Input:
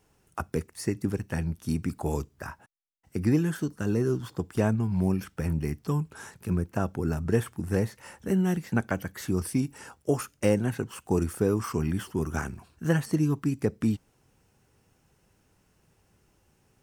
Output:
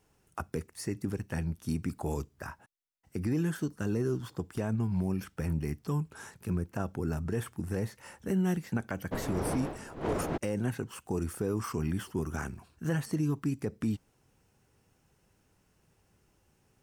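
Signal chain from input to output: 9.11–10.36 wind noise 540 Hz -26 dBFS; limiter -18.5 dBFS, peak gain reduction 10.5 dB; gain -3 dB

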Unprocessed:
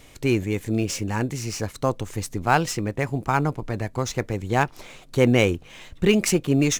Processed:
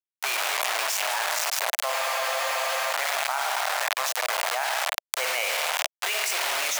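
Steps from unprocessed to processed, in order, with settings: spring tank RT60 1.8 s, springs 51 ms, chirp 25 ms, DRR 2.5 dB; bit-crush 4-bit; elliptic high-pass 640 Hz, stop band 80 dB; spectral freeze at 1.94, 0.98 s; fast leveller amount 100%; gain -8.5 dB

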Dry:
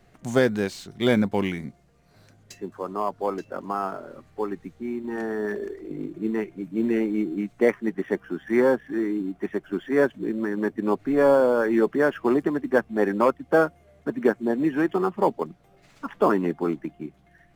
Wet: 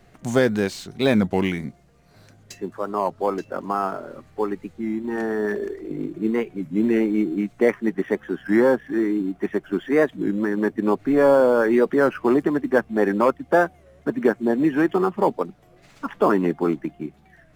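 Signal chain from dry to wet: in parallel at -1 dB: limiter -15 dBFS, peak gain reduction 7.5 dB; on the sum: record warp 33 1/3 rpm, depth 160 cents; gain -1.5 dB

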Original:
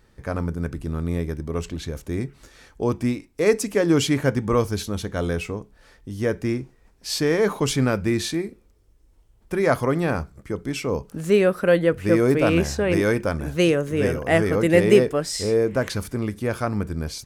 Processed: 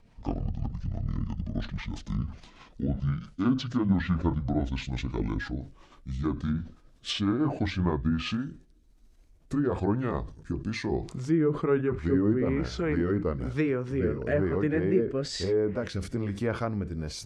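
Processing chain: gliding pitch shift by -11.5 st ending unshifted; in parallel at +3 dB: compressor, threshold -30 dBFS, peak gain reduction 17.5 dB; on the sum: rotary speaker horn 6 Hz, later 1.1 Hz, at 7.4; treble ducked by the level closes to 1600 Hz, closed at -15.5 dBFS; sustainer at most 130 dB/s; gain -6.5 dB

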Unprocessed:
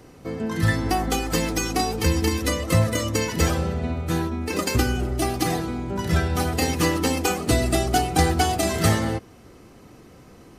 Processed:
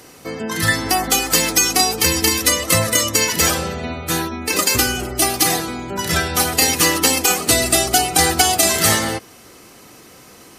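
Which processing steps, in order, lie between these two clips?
tilt +3 dB/oct; spectral gate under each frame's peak -30 dB strong; maximiser +7.5 dB; gain -1 dB

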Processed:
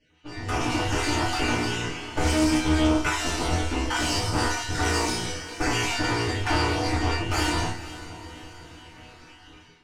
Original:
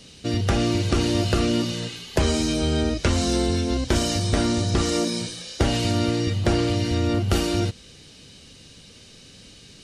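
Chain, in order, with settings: random spectral dropouts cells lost 32%; low-pass opened by the level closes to 2600 Hz, open at -18.5 dBFS; tube stage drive 27 dB, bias 0.8; graphic EQ 125/250/500/4000/8000 Hz -11/-6/-8/-8/+5 dB; diffused feedback echo 0.484 s, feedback 48%, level -15 dB; FDN reverb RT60 0.3 s, low-frequency decay 0.95×, high-frequency decay 0.75×, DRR -5 dB; AGC gain up to 16.5 dB; high shelf 5300 Hz -10.5 dB; resonator bank E2 major, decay 0.41 s; Doppler distortion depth 0.12 ms; gain +7 dB

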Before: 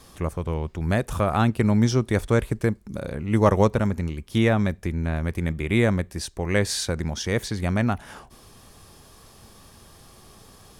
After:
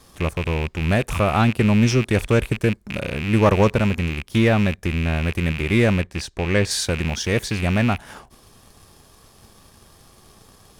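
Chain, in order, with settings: rattling part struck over -33 dBFS, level -21 dBFS; 6.01–6.71 air absorption 55 m; sample leveller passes 1

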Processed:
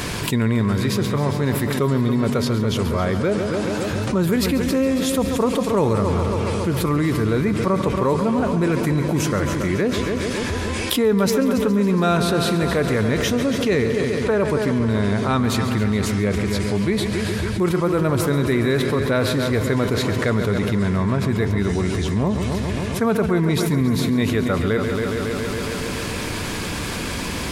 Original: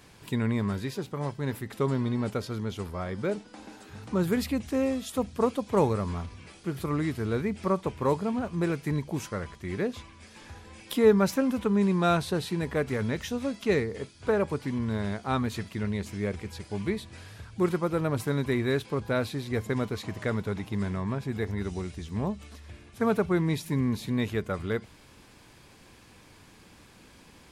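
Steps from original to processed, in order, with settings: notch 810 Hz, Q 12; multi-head echo 0.138 s, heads first and second, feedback 64%, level -14 dB; fast leveller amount 70%

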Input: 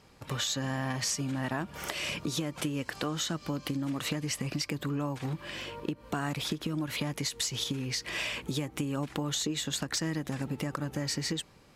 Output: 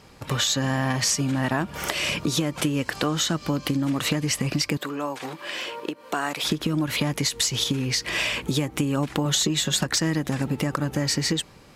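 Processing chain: 4.77–6.44 HPF 400 Hz 12 dB/oct; 9.25–9.86 comb 5.4 ms, depth 59%; gain +8.5 dB

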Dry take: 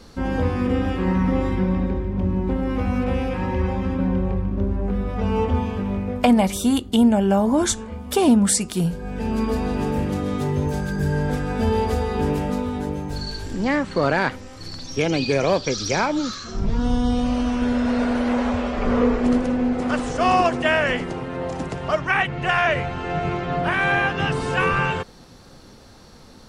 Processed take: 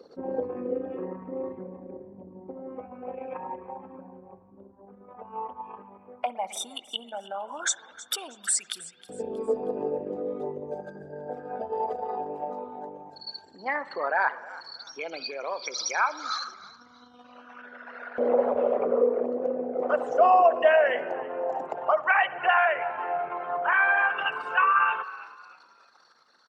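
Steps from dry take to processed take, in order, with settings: formant sharpening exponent 2; HPF 55 Hz; de-hum 110.4 Hz, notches 2; compressor 3:1, threshold -22 dBFS, peak gain reduction 8.5 dB; on a send: frequency-shifting echo 0.317 s, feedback 35%, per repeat -67 Hz, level -18 dB; on the sum: LFO high-pass saw up 0.11 Hz 480–1600 Hz; spring tank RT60 1.6 s, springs 55 ms, chirp 75 ms, DRR 16 dB

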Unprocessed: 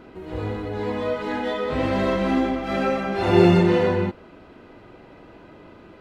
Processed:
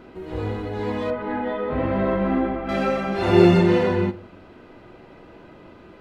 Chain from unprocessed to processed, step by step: 1.1–2.69 LPF 1800 Hz 12 dB/oct; reverb RT60 0.50 s, pre-delay 5 ms, DRR 14 dB

